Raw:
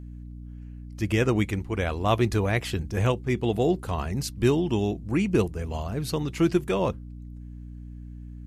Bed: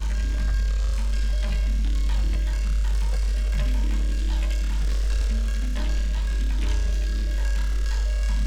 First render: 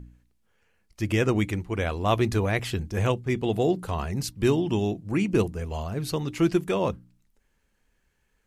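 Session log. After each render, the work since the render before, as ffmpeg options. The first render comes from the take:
-af "bandreject=f=60:t=h:w=4,bandreject=f=120:t=h:w=4,bandreject=f=180:t=h:w=4,bandreject=f=240:t=h:w=4,bandreject=f=300:t=h:w=4"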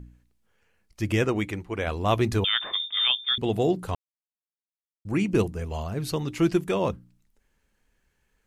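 -filter_complex "[0:a]asettb=1/sr,asplit=3[a][b][c];[a]atrim=end=1.254[d];[b]atrim=start=1.25:end=1.87,asetpts=PTS-STARTPTS,afade=t=in:d=0.004:c=qsin,afade=t=out:st=0.616:d=0.004:c=qsin,bass=f=250:g=-6,treble=f=4k:g=-4[e];[c]atrim=start=1.866[f];[d][e]acrossfade=d=0.004:c1=hsin:c2=qsin[g];[g][f]acrossfade=d=0.004:c1=qsin:c2=hsin,asettb=1/sr,asplit=3[h][i][j];[h]atrim=end=2.444[k];[i]atrim=start=2.44:end=3.38,asetpts=PTS-STARTPTS,afade=t=in:d=0.004:c=qsin,afade=t=out:st=0.936:d=0.004:c=qsin,lowpass=f=3.1k:t=q:w=0.5098,lowpass=f=3.1k:t=q:w=0.6013,lowpass=f=3.1k:t=q:w=0.9,lowpass=f=3.1k:t=q:w=2.563,afreqshift=-3700[l];[j]atrim=start=3.376[m];[k][l]acrossfade=d=0.004:c1=hsin:c2=qsin[n];[n][m]acrossfade=d=0.004:c1=qsin:c2=hsin,asplit=3[o][p][q];[o]atrim=end=3.95,asetpts=PTS-STARTPTS,afade=t=out:st=3.946:d=0.004:c=hsin[r];[p]atrim=start=3.95:end=5.05,asetpts=PTS-STARTPTS,volume=0[s];[q]atrim=start=5.05,asetpts=PTS-STARTPTS,afade=t=in:d=0.004:c=hsin[t];[r][s][t]concat=n=3:v=0:a=1"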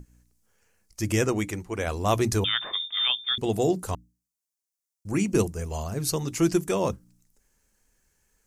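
-af "highshelf=f=4.6k:t=q:w=1.5:g=9,bandreject=f=60:t=h:w=6,bandreject=f=120:t=h:w=6,bandreject=f=180:t=h:w=6,bandreject=f=240:t=h:w=6,bandreject=f=300:t=h:w=6"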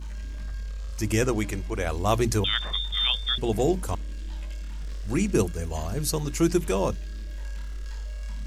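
-filter_complex "[1:a]volume=-11dB[a];[0:a][a]amix=inputs=2:normalize=0"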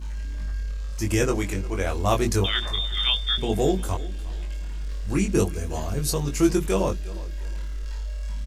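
-filter_complex "[0:a]asplit=2[a][b];[b]adelay=21,volume=-4dB[c];[a][c]amix=inputs=2:normalize=0,aecho=1:1:356|712|1068:0.112|0.0381|0.013"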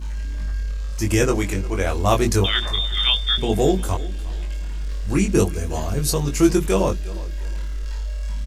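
-af "volume=4dB"

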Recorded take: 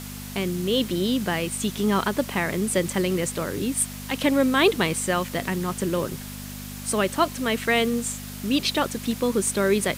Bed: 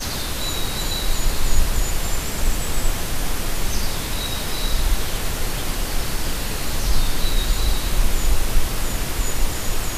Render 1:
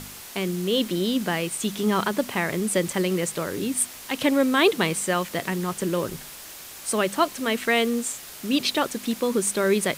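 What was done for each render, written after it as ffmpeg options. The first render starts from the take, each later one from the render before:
-af "bandreject=f=50:t=h:w=4,bandreject=f=100:t=h:w=4,bandreject=f=150:t=h:w=4,bandreject=f=200:t=h:w=4,bandreject=f=250:t=h:w=4"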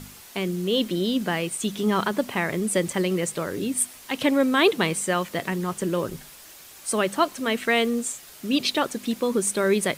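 -af "afftdn=nr=6:nf=-41"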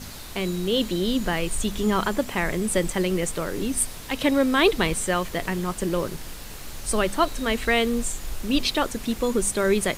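-filter_complex "[1:a]volume=-14.5dB[a];[0:a][a]amix=inputs=2:normalize=0"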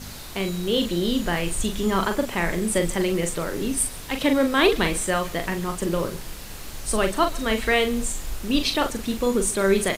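-filter_complex "[0:a]asplit=2[a][b];[b]adelay=41,volume=-7dB[c];[a][c]amix=inputs=2:normalize=0,aecho=1:1:136:0.0794"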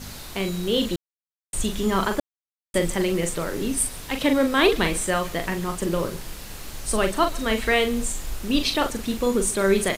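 -filter_complex "[0:a]asplit=5[a][b][c][d][e];[a]atrim=end=0.96,asetpts=PTS-STARTPTS,afade=t=out:st=0.956:d=0.004:c=hsin[f];[b]atrim=start=0.96:end=1.53,asetpts=PTS-STARTPTS,volume=0[g];[c]atrim=start=1.53:end=2.2,asetpts=PTS-STARTPTS,afade=t=in:d=0.004:c=hsin,afade=t=out:st=0.666:d=0.004:c=hsin[h];[d]atrim=start=2.2:end=2.74,asetpts=PTS-STARTPTS,volume=0[i];[e]atrim=start=2.74,asetpts=PTS-STARTPTS,afade=t=in:d=0.004:c=hsin[j];[f][g][h][i][j]concat=n=5:v=0:a=1"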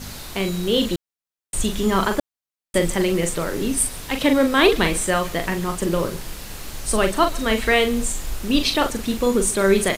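-af "volume=3dB"

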